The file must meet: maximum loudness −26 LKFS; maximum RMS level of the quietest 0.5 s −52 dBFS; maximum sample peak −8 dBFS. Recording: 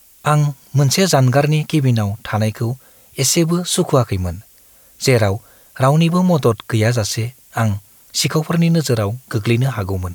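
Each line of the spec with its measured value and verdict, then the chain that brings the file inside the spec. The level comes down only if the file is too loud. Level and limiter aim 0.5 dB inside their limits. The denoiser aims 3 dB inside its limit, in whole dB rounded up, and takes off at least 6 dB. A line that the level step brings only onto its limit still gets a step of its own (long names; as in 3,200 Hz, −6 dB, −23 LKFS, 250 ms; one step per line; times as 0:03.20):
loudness −17.0 LKFS: out of spec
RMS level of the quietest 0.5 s −48 dBFS: out of spec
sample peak −3.0 dBFS: out of spec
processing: level −9.5 dB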